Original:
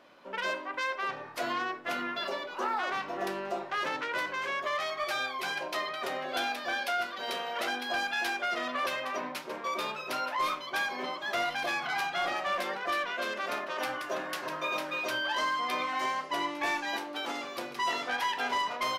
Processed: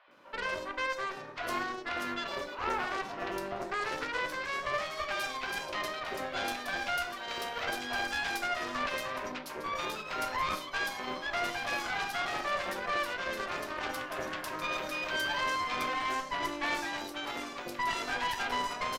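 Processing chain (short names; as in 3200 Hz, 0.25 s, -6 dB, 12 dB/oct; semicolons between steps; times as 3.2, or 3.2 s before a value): three bands offset in time mids, lows, highs 80/110 ms, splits 680/3900 Hz; added harmonics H 4 -12 dB, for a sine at -20 dBFS; gain -1 dB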